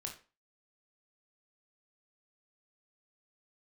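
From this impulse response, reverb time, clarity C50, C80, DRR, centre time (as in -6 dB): 0.35 s, 8.5 dB, 14.5 dB, 1.0 dB, 18 ms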